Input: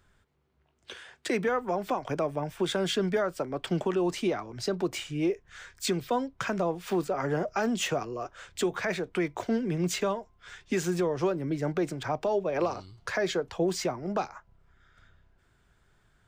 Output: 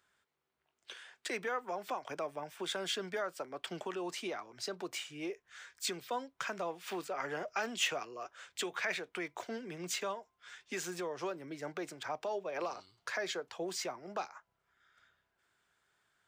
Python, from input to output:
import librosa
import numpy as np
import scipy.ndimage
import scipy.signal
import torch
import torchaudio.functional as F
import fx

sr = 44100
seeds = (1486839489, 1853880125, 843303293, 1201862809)

y = fx.dynamic_eq(x, sr, hz=2600.0, q=1.1, threshold_db=-46.0, ratio=4.0, max_db=5, at=(6.59, 9.13))
y = fx.highpass(y, sr, hz=940.0, slope=6)
y = F.gain(torch.from_numpy(y), -4.0).numpy()